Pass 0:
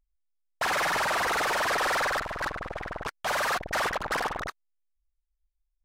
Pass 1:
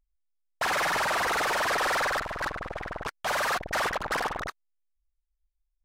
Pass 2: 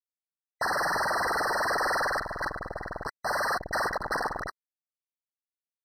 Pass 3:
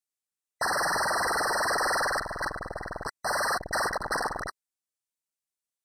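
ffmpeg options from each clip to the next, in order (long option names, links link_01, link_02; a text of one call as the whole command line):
ffmpeg -i in.wav -af anull out.wav
ffmpeg -i in.wav -af "aeval=exprs='sgn(val(0))*max(abs(val(0))-0.00158,0)':channel_layout=same,afftfilt=real='re*eq(mod(floor(b*sr/1024/2000),2),0)':imag='im*eq(mod(floor(b*sr/1024/2000),2),0)':win_size=1024:overlap=0.75" out.wav
ffmpeg -i in.wav -af "equalizer=frequency=8300:width=0.94:gain=8.5" out.wav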